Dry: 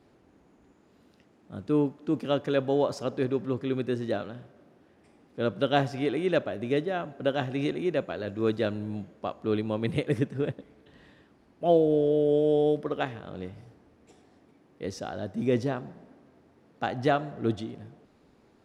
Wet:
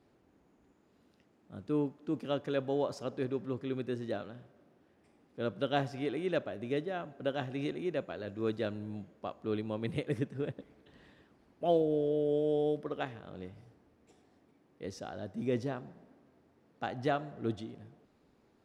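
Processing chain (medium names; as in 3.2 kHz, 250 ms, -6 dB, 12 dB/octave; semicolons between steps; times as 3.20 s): 10.55–11.82 s: harmonic-percussive split percussive +5 dB; trim -7 dB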